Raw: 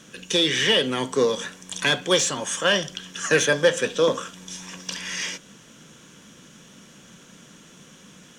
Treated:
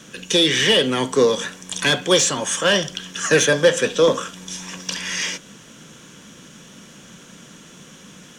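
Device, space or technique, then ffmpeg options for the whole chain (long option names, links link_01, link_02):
one-band saturation: -filter_complex "[0:a]acrossover=split=580|4000[link_01][link_02][link_03];[link_02]asoftclip=type=tanh:threshold=-19dB[link_04];[link_01][link_04][link_03]amix=inputs=3:normalize=0,volume=5dB"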